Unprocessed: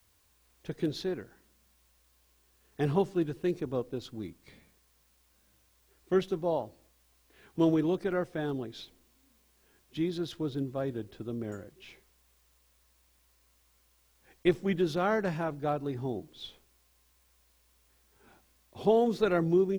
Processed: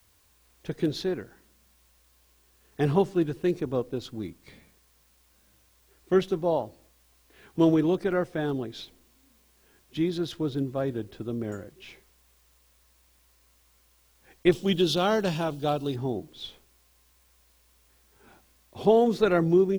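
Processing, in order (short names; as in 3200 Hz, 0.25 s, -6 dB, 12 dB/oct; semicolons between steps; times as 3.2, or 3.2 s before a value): 14.52–15.96 resonant high shelf 2500 Hz +6.5 dB, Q 3; gain +4.5 dB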